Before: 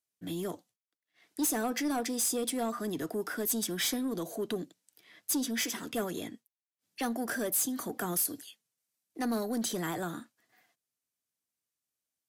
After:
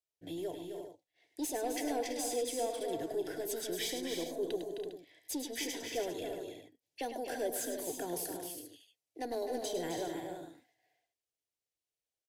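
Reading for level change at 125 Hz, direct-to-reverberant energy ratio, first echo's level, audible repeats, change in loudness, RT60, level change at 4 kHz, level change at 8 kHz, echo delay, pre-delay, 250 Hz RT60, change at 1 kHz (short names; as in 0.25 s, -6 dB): -10.0 dB, none, -8.5 dB, 5, -5.5 dB, none, -4.0 dB, -7.5 dB, 0.103 s, none, none, -3.0 dB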